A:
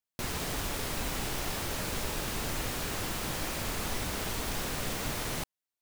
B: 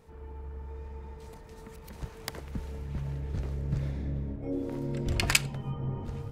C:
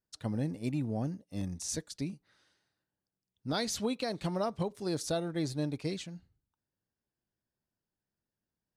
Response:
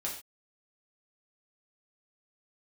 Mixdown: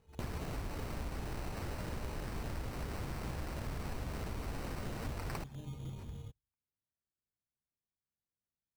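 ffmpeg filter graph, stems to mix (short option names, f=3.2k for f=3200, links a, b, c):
-filter_complex "[0:a]lowpass=1.7k,volume=0.5dB[a];[1:a]volume=-13dB[b];[2:a]acompressor=threshold=-34dB:ratio=6,volume=-15dB[c];[a][b][c]amix=inputs=3:normalize=0,equalizer=f=62:w=0.55:g=7,acrusher=samples=13:mix=1:aa=0.000001,acompressor=threshold=-39dB:ratio=3"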